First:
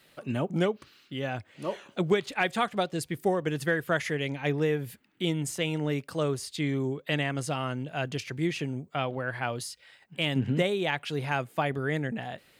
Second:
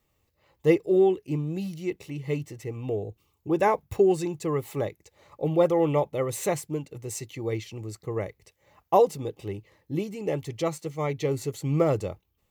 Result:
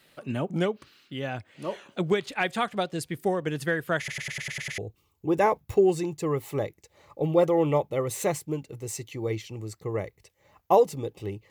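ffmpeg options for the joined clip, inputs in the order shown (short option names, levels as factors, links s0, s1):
-filter_complex "[0:a]apad=whole_dur=11.5,atrim=end=11.5,asplit=8[s0][s1][s2][s3][s4][s5][s6][s7];[s0]atrim=end=4.082[s8];[s1]atrim=start=3.978:end=4.082[s9];[s2]atrim=start=3.978:end=4.082[s10];[s3]atrim=start=3.978:end=4.082[s11];[s4]atrim=start=3.978:end=4.082[s12];[s5]atrim=start=3.978:end=4.082[s13];[s6]atrim=start=3.978:end=4.082[s14];[s7]atrim=start=3.978:end=4.082[s15];[1:a]atrim=start=2.998:end=9.72[s16];[s8][s9]acrossfade=d=0.004:c1=hsin:c2=hsin[s17];[s17][s10]acrossfade=d=0.004:c1=hsin:c2=hsin[s18];[s18][s11]acrossfade=d=0.004:c1=hsin:c2=hsin[s19];[s19][s12]acrossfade=d=0.004:c1=hsin:c2=hsin[s20];[s20][s13]acrossfade=d=0.004:c1=hsin:c2=hsin[s21];[s21][s14]acrossfade=d=0.004:c1=hsin:c2=hsin[s22];[s22][s15]acrossfade=d=0.004:c1=hsin:c2=hsin[s23];[s23][s16]acrossfade=d=0.004:c1=hsin:c2=hsin"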